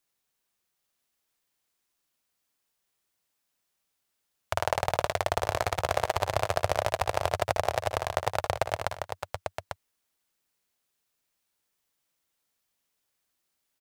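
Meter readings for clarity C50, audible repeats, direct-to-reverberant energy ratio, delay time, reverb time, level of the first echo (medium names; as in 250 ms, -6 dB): no reverb, 5, no reverb, 59 ms, no reverb, -11.0 dB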